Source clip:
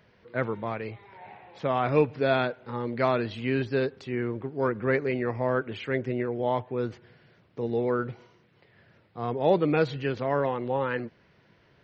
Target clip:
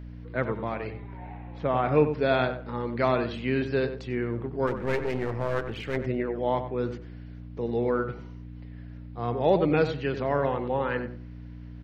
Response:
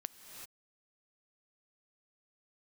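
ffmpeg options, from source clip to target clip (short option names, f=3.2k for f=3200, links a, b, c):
-filter_complex "[0:a]aeval=exprs='val(0)+0.0112*(sin(2*PI*60*n/s)+sin(2*PI*2*60*n/s)/2+sin(2*PI*3*60*n/s)/3+sin(2*PI*4*60*n/s)/4+sin(2*PI*5*60*n/s)/5)':c=same,asettb=1/sr,asplit=3[a][b][c];[a]atrim=end=0.934[d];[b]atrim=start=0.93:end=2.07,asetpts=PTS-STARTPTS,afade=t=in:d=0.004:c=qsin,afade=t=out:st=1.136:d=0.004:c=qsin,aemphasis=mode=reproduction:type=75fm[e];[c]atrim=start=2.066[f];[d][e]acrossfade=d=0.004:c1=hsin:c2=qsin[g];[g][f]acrossfade=d=0.004:c1=qsin:c2=hsin,asplit=3[h][i][j];[h]afade=t=out:st=4.66:d=0.02[k];[i]aeval=exprs='clip(val(0),-1,0.02)':c=same,afade=t=in:st=4.66:d=0.02,afade=t=out:st=5.96:d=0.02[l];[j]afade=t=in:st=5.96:d=0.02[m];[k][l][m]amix=inputs=3:normalize=0,asplit=2[n][o];[o]adelay=93,lowpass=f=2.1k:p=1,volume=-9dB,asplit=2[p][q];[q]adelay=93,lowpass=f=2.1k:p=1,volume=0.23,asplit=2[r][s];[s]adelay=93,lowpass=f=2.1k:p=1,volume=0.23[t];[p][r][t]amix=inputs=3:normalize=0[u];[n][u]amix=inputs=2:normalize=0"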